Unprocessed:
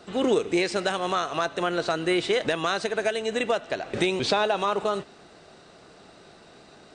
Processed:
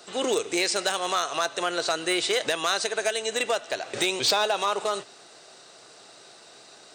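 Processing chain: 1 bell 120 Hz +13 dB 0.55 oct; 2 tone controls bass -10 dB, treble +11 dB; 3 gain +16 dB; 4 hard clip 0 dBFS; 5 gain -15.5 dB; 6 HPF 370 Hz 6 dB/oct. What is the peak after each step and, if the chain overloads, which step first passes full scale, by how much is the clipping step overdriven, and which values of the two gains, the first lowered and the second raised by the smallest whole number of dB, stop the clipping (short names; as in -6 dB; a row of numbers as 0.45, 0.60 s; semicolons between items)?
-10.0, -9.5, +6.5, 0.0, -15.5, -11.5 dBFS; step 3, 6.5 dB; step 3 +9 dB, step 5 -8.5 dB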